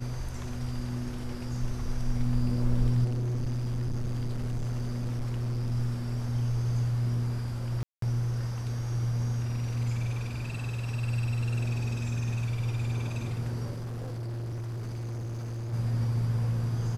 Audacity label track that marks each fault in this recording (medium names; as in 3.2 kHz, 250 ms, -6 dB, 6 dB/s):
3.040000	5.720000	clipped -27.5 dBFS
7.830000	8.020000	dropout 193 ms
13.700000	15.740000	clipped -33 dBFS